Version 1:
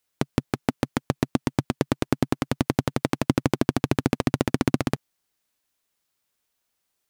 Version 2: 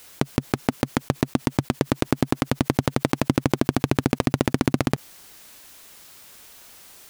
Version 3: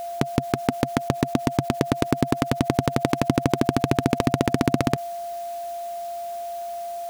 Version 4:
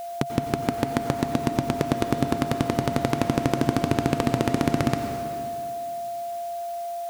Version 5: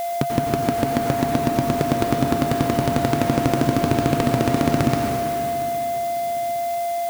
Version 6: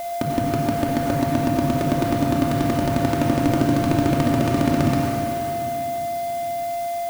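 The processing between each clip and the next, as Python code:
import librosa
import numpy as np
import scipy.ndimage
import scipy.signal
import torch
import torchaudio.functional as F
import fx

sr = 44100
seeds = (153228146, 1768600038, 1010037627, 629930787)

y1 = fx.env_flatten(x, sr, amount_pct=50)
y2 = y1 + 10.0 ** (-29.0 / 20.0) * np.sin(2.0 * np.pi * 690.0 * np.arange(len(y1)) / sr)
y3 = fx.rev_plate(y2, sr, seeds[0], rt60_s=2.4, hf_ratio=0.95, predelay_ms=80, drr_db=5.0)
y3 = y3 * 10.0 ** (-2.5 / 20.0)
y4 = fx.power_curve(y3, sr, exponent=0.7)
y4 = fx.dmg_noise_colour(y4, sr, seeds[1], colour='blue', level_db=-42.0)
y4 = fx.echo_feedback(y4, sr, ms=812, feedback_pct=37, wet_db=-19)
y5 = fx.room_shoebox(y4, sr, seeds[2], volume_m3=2000.0, walls='furnished', distance_m=2.6)
y5 = y5 * 10.0 ** (-4.0 / 20.0)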